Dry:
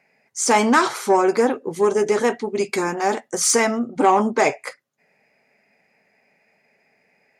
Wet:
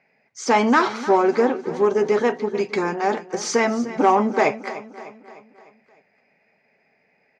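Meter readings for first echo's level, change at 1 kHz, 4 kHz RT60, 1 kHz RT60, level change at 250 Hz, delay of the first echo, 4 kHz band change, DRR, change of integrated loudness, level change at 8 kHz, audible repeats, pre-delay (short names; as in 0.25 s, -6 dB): -15.0 dB, -0.5 dB, none, none, 0.0 dB, 0.302 s, -4.0 dB, none, -1.0 dB, -10.5 dB, 4, none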